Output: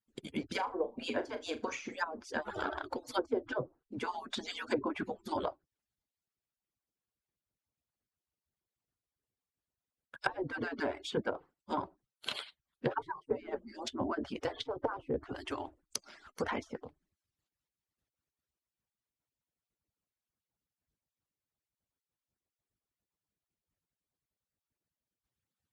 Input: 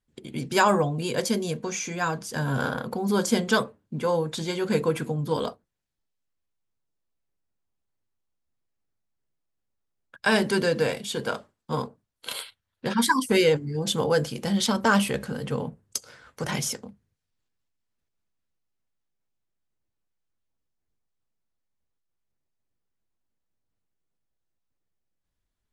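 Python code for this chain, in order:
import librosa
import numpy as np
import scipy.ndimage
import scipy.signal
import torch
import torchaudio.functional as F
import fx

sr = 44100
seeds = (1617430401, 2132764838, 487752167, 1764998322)

y = fx.hpss_only(x, sr, part='percussive')
y = fx.env_lowpass_down(y, sr, base_hz=470.0, full_db=-24.5)
y = fx.room_flutter(y, sr, wall_m=6.6, rt60_s=0.21, at=(0.49, 2.0))
y = F.gain(torch.from_numpy(y), -1.5).numpy()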